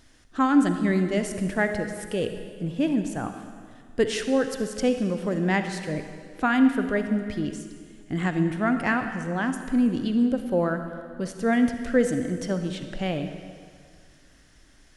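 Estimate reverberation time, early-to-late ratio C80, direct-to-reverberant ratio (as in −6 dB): 2.0 s, 9.0 dB, 7.0 dB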